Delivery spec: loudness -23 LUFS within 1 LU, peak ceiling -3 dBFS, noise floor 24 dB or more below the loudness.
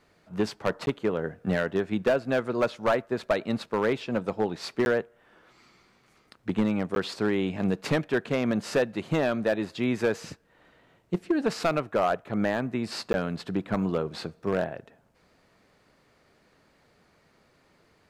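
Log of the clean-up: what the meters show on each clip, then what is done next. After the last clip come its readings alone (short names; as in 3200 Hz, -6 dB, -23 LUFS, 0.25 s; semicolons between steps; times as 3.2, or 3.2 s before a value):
clipped 0.6%; flat tops at -17.0 dBFS; dropouts 4; longest dropout 11 ms; loudness -28.5 LUFS; peak -17.0 dBFS; loudness target -23.0 LUFS
-> clip repair -17 dBFS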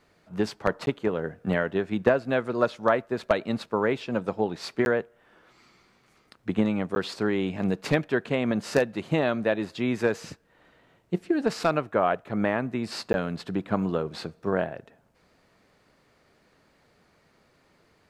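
clipped 0.0%; dropouts 4; longest dropout 11 ms
-> interpolate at 0.86/4.85/6.95/13.13, 11 ms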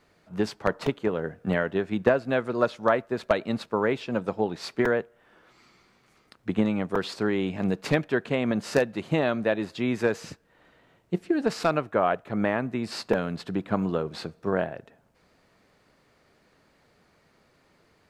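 dropouts 0; loudness -27.5 LUFS; peak -8.0 dBFS; loudness target -23.0 LUFS
-> gain +4.5 dB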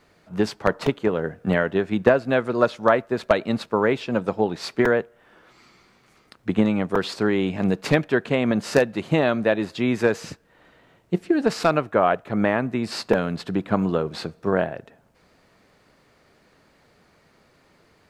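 loudness -23.0 LUFS; peak -3.5 dBFS; noise floor -60 dBFS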